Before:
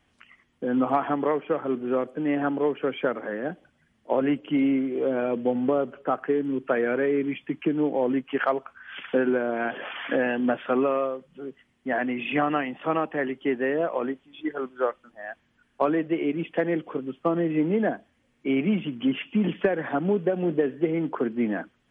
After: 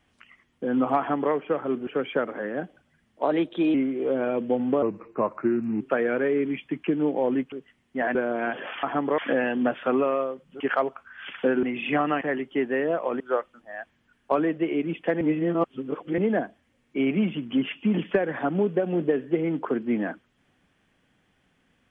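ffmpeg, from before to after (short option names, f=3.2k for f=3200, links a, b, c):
-filter_complex "[0:a]asplit=16[a][b][c][d][e][f][g][h][i][j][k][l][m][n][o][p];[a]atrim=end=1.872[q];[b]atrim=start=2.748:end=4.114[r];[c]atrim=start=4.11:end=4.7,asetpts=PTS-STARTPTS,asetrate=50715,aresample=44100,atrim=end_sample=22625,asetpts=PTS-STARTPTS[s];[d]atrim=start=4.696:end=5.784[t];[e]atrim=start=5.78:end=6.59,asetpts=PTS-STARTPTS,asetrate=36162,aresample=44100,atrim=end_sample=43562,asetpts=PTS-STARTPTS[u];[f]atrim=start=6.586:end=8.302[v];[g]atrim=start=11.428:end=12.062[w];[h]atrim=start=9.328:end=10.012[x];[i]atrim=start=0.978:end=1.332[y];[j]atrim=start=10.008:end=11.432[z];[k]atrim=start=8.298:end=9.332[aa];[l]atrim=start=12.058:end=12.642[ab];[m]atrim=start=13.108:end=14.102[ac];[n]atrim=start=14.698:end=16.712[ad];[o]atrim=start=16.708:end=17.682,asetpts=PTS-STARTPTS,areverse[ae];[p]atrim=start=17.678[af];[q][r]acrossfade=d=0.004:c1=hsin:c2=hsin[ag];[ag][s]acrossfade=d=0.004:c1=hsin:c2=hsin[ah];[ah][t]acrossfade=d=0.004:c1=hsin:c2=hsin[ai];[ai][u]acrossfade=d=0.004:c1=hsin:c2=hsin[aj];[aj][v]acrossfade=d=0.004:c1=hsin:c2=hsin[ak];[ak][w]acrossfade=d=0.004:c1=hsin:c2=hsin[al];[al][x]acrossfade=d=0.004:c1=hsin:c2=hsin[am];[am][y]acrossfade=d=0.004:c1=hsin:c2=hsin[an];[an][z]acrossfade=d=0.004:c1=hsin:c2=hsin[ao];[ao][aa]acrossfade=d=0.004:c1=hsin:c2=hsin[ap];[ap][ab]acrossfade=d=0.004:c1=hsin:c2=hsin[aq];[aq][ac]acrossfade=d=0.004:c1=hsin:c2=hsin[ar];[ar][ad]acrossfade=d=0.004:c1=hsin:c2=hsin[as];[as][ae]acrossfade=d=0.004:c1=hsin:c2=hsin[at];[at][af]acrossfade=d=0.004:c1=hsin:c2=hsin"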